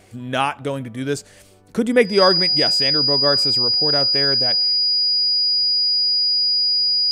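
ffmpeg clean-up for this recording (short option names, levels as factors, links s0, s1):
-af "bandreject=f=97.7:t=h:w=4,bandreject=f=195.4:t=h:w=4,bandreject=f=293.1:t=h:w=4,bandreject=f=390.8:t=h:w=4,bandreject=f=488.5:t=h:w=4,bandreject=f=4900:w=30"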